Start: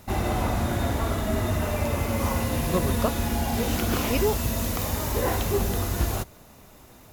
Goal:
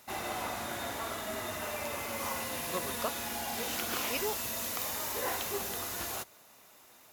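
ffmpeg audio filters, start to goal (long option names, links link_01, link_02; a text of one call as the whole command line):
ffmpeg -i in.wav -af "highpass=frequency=1100:poles=1,volume=-3dB" out.wav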